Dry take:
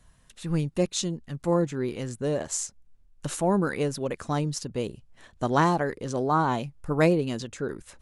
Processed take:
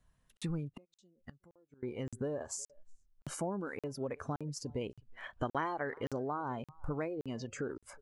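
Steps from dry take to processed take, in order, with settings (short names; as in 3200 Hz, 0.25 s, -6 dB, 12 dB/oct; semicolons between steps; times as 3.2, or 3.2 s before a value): compressor 10:1, threshold -36 dBFS, peak gain reduction 20 dB; 4.81–6.13 bell 2100 Hz +7 dB 2.5 oct; echo 0.367 s -23 dB; spectral noise reduction 15 dB; high shelf 3300 Hz -5.5 dB; 0.77–1.83 flipped gate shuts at -37 dBFS, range -26 dB; crackling interface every 0.57 s, samples 2048, zero, from 0.37; gain +2.5 dB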